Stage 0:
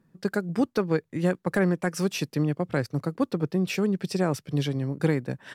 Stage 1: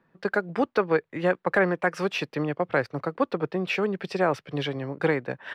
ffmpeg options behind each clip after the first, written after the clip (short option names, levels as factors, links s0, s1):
-filter_complex "[0:a]acrossover=split=440 3500:gain=0.2 1 0.0794[s0][s1][s2];[s0][s1][s2]amix=inputs=3:normalize=0,volume=2.24"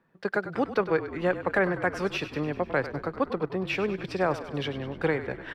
-filter_complex "[0:a]asplit=8[s0][s1][s2][s3][s4][s5][s6][s7];[s1]adelay=99,afreqshift=-40,volume=0.237[s8];[s2]adelay=198,afreqshift=-80,volume=0.15[s9];[s3]adelay=297,afreqshift=-120,volume=0.0944[s10];[s4]adelay=396,afreqshift=-160,volume=0.0596[s11];[s5]adelay=495,afreqshift=-200,volume=0.0372[s12];[s6]adelay=594,afreqshift=-240,volume=0.0234[s13];[s7]adelay=693,afreqshift=-280,volume=0.0148[s14];[s0][s8][s9][s10][s11][s12][s13][s14]amix=inputs=8:normalize=0,volume=0.75"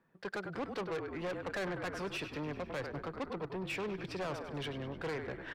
-af "asoftclip=type=tanh:threshold=0.0335,volume=0.596"